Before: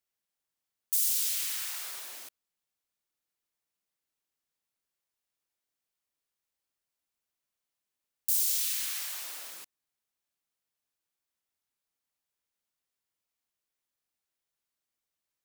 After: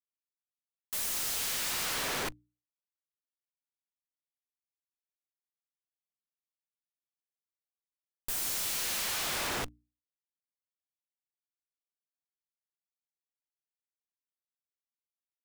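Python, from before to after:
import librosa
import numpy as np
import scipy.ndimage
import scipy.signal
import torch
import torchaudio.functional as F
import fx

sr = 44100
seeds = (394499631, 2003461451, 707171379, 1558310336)

y = fx.schmitt(x, sr, flips_db=-42.5)
y = fx.quant_dither(y, sr, seeds[0], bits=10, dither='none')
y = fx.hum_notches(y, sr, base_hz=60, count=5)
y = F.gain(torch.from_numpy(y), 6.0).numpy()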